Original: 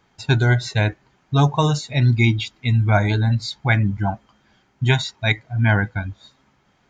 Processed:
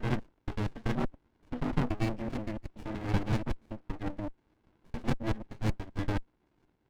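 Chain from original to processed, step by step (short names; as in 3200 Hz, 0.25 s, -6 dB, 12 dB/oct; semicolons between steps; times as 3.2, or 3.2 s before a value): slices in reverse order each 95 ms, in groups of 5; mistuned SSB +98 Hz 180–2500 Hz; running maximum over 65 samples; gain -6.5 dB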